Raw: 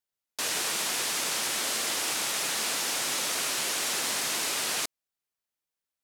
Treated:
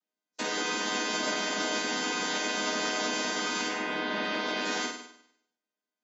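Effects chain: chord vocoder minor triad, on G#3; 3.68–4.64 LPF 2800 Hz -> 5200 Hz 24 dB/oct; flutter echo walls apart 8.6 m, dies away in 0.72 s; on a send at -19.5 dB: reverb, pre-delay 7 ms; on the sum: AAC 24 kbps 22050 Hz

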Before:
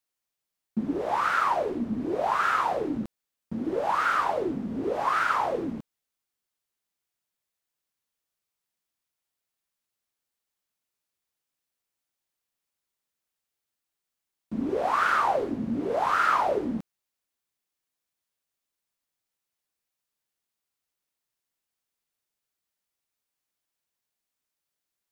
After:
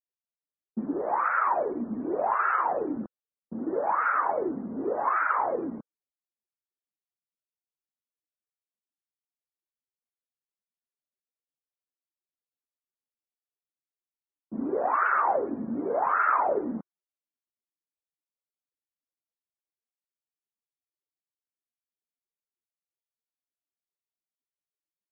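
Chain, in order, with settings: loudest bins only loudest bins 64; three-band isolator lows -13 dB, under 200 Hz, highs -22 dB, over 2500 Hz; low-pass opened by the level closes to 490 Hz, open at -22.5 dBFS

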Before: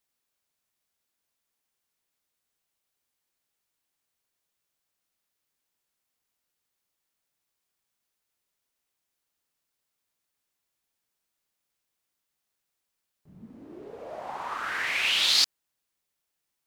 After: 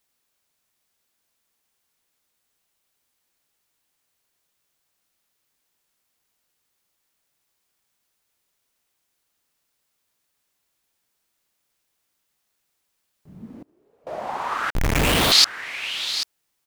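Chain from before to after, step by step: 13.58–14.07 flipped gate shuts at -39 dBFS, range -27 dB; echo 0.788 s -11.5 dB; 14.7–15.32 Schmitt trigger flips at -22.5 dBFS; gain +7.5 dB

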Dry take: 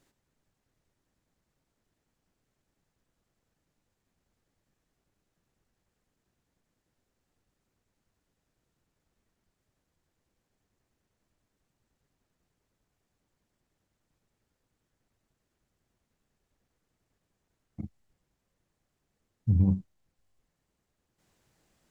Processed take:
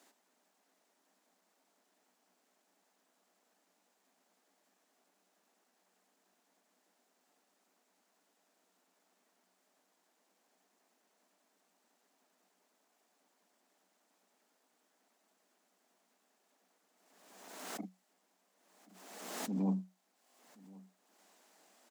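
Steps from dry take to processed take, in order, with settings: tone controls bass -14 dB, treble +3 dB; notch 530 Hz, Q 12; in parallel at -3 dB: compressor, threshold -48 dBFS, peak gain reduction 16.5 dB; on the sum: rippled Chebyshev high-pass 180 Hz, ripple 6 dB; on a send: echo 1.076 s -23 dB; on the sum: backwards sustainer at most 41 dB/s; gain +5.5 dB

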